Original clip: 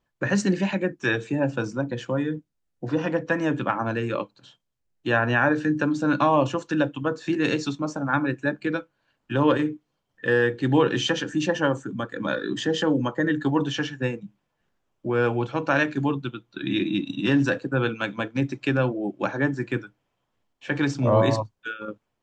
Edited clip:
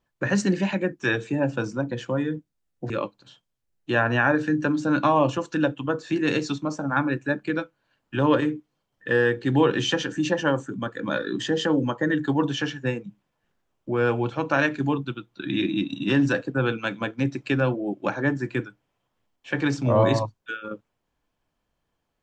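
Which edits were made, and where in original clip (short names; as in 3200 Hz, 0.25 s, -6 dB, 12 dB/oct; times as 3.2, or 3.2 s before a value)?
2.9–4.07 cut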